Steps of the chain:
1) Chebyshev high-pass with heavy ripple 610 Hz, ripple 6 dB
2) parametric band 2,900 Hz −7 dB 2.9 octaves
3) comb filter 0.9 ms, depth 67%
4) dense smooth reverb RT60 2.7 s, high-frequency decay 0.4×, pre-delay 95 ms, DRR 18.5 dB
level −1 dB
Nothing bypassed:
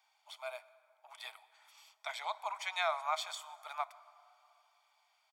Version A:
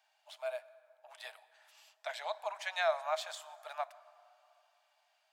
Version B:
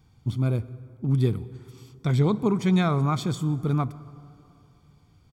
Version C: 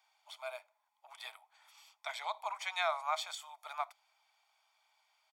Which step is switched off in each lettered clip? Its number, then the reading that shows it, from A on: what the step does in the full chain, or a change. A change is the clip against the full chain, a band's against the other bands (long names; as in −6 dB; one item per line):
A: 3, 500 Hz band +8.0 dB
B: 1, 500 Hz band +10.0 dB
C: 4, change in momentary loudness spread −4 LU